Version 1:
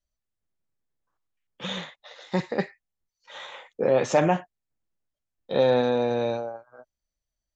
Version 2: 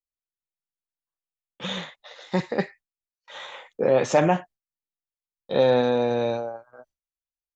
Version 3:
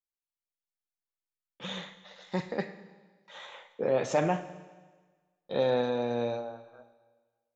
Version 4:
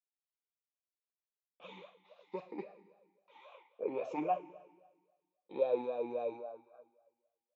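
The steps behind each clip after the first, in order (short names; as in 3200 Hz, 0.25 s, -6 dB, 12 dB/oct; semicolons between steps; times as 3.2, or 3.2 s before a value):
gate with hold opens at -47 dBFS; gain +1.5 dB
Schroeder reverb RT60 1.4 s, combs from 26 ms, DRR 11.5 dB; gain -7.5 dB
vowel sweep a-u 3.7 Hz; gain +2 dB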